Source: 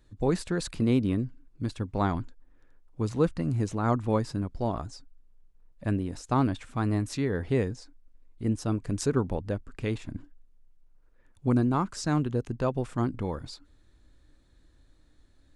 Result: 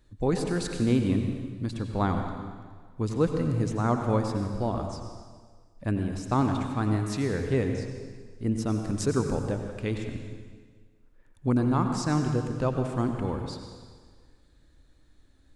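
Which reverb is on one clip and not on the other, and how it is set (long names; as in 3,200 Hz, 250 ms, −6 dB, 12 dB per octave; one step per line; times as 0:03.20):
dense smooth reverb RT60 1.6 s, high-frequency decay 0.95×, pre-delay 75 ms, DRR 4.5 dB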